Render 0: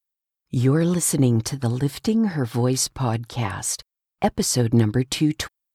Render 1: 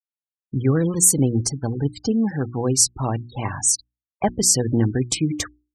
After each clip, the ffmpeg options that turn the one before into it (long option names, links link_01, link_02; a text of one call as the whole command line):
ffmpeg -i in.wav -af "afftfilt=real='re*gte(hypot(re,im),0.0398)':imag='im*gte(hypot(re,im),0.0398)':win_size=1024:overlap=0.75,highshelf=frequency=5100:width_type=q:width=1.5:gain=6.5,bandreject=frequency=60:width_type=h:width=6,bandreject=frequency=120:width_type=h:width=6,bandreject=frequency=180:width_type=h:width=6,bandreject=frequency=240:width_type=h:width=6,bandreject=frequency=300:width_type=h:width=6,bandreject=frequency=360:width_type=h:width=6" out.wav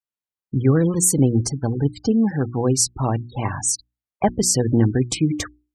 ffmpeg -i in.wav -af "highshelf=frequency=2800:gain=-6,volume=2.5dB" out.wav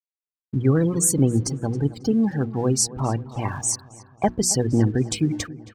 ffmpeg -i in.wav -filter_complex "[0:a]aeval=exprs='sgn(val(0))*max(abs(val(0))-0.00376,0)':channel_layout=same,asplit=2[link_01][link_02];[link_02]adelay=272,lowpass=frequency=3200:poles=1,volume=-17dB,asplit=2[link_03][link_04];[link_04]adelay=272,lowpass=frequency=3200:poles=1,volume=0.55,asplit=2[link_05][link_06];[link_06]adelay=272,lowpass=frequency=3200:poles=1,volume=0.55,asplit=2[link_07][link_08];[link_08]adelay=272,lowpass=frequency=3200:poles=1,volume=0.55,asplit=2[link_09][link_10];[link_10]adelay=272,lowpass=frequency=3200:poles=1,volume=0.55[link_11];[link_01][link_03][link_05][link_07][link_09][link_11]amix=inputs=6:normalize=0,volume=-2dB" out.wav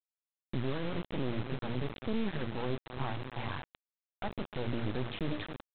ffmpeg -i in.wav -af "alimiter=limit=-18.5dB:level=0:latency=1:release=20,aresample=8000,acrusher=bits=3:dc=4:mix=0:aa=0.000001,aresample=44100,volume=-4.5dB" out.wav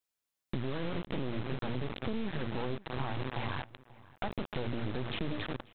ffmpeg -i in.wav -filter_complex "[0:a]asplit=2[link_01][link_02];[link_02]alimiter=level_in=10.5dB:limit=-24dB:level=0:latency=1,volume=-10.5dB,volume=-2.5dB[link_03];[link_01][link_03]amix=inputs=2:normalize=0,acompressor=threshold=-33dB:ratio=6,asplit=2[link_04][link_05];[link_05]adelay=536.4,volume=-20dB,highshelf=frequency=4000:gain=-12.1[link_06];[link_04][link_06]amix=inputs=2:normalize=0,volume=3dB" out.wav